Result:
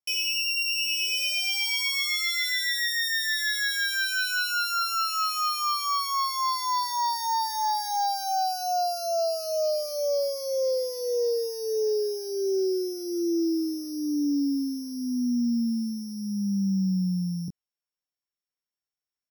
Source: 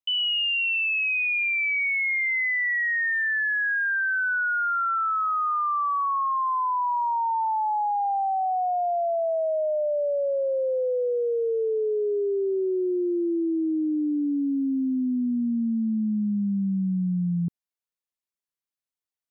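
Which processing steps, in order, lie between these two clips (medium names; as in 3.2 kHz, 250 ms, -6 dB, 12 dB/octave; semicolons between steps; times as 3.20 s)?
sorted samples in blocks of 8 samples; doubling 21 ms -4.5 dB; trim -3.5 dB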